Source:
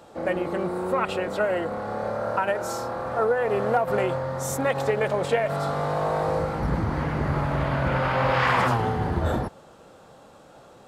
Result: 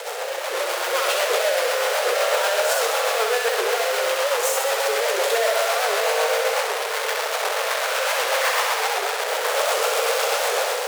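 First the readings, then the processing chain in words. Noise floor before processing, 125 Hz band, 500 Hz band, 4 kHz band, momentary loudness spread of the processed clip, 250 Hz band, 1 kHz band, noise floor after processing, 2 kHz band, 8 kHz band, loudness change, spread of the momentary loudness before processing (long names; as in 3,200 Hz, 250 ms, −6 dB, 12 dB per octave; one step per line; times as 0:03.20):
−50 dBFS, below −40 dB, +4.0 dB, +16.0 dB, 4 LU, below −15 dB, +3.0 dB, −27 dBFS, +7.5 dB, +16.0 dB, +4.0 dB, 6 LU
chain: sign of each sample alone
Chebyshev high-pass filter 440 Hz, order 6
automatic gain control gain up to 8 dB
rotating-speaker cabinet horn 8 Hz
flutter between parallel walls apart 11.2 metres, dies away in 0.97 s
wow of a warped record 78 rpm, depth 160 cents
level −1.5 dB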